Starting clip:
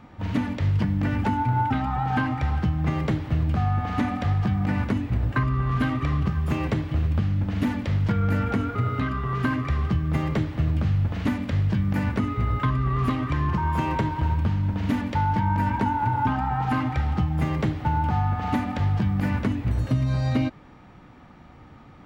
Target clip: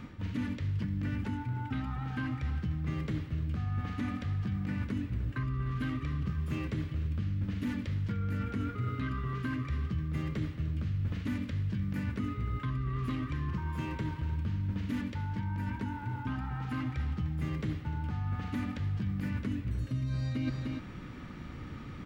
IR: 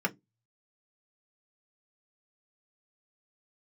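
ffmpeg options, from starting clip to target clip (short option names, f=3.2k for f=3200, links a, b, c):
-af "aecho=1:1:301:0.141,areverse,acompressor=threshold=-36dB:ratio=10,areverse,equalizer=f=770:w=1.6:g=-13.5,volume=6dB"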